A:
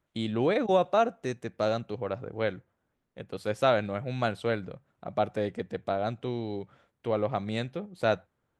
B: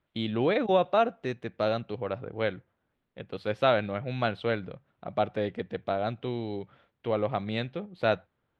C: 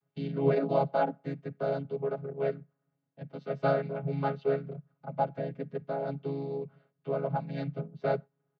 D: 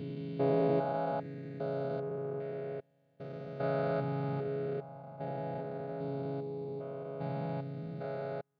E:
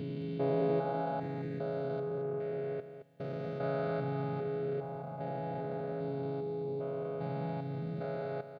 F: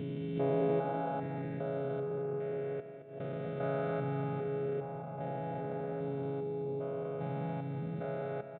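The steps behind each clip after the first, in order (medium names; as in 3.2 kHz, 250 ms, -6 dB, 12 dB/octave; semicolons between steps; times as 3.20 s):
resonant high shelf 5.2 kHz -14 dB, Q 1.5
vocoder on a held chord minor triad, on C#3; comb 7.4 ms, depth 95%; trim -4.5 dB
spectrogram pixelated in time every 400 ms
in parallel at -2.5 dB: compressor with a negative ratio -44 dBFS, ratio -1; on the sum: delay 219 ms -10.5 dB; trim -2.5 dB
resampled via 8 kHz; two-band feedback delay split 670 Hz, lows 446 ms, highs 173 ms, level -15.5 dB; swell ahead of each attack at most 95 dB/s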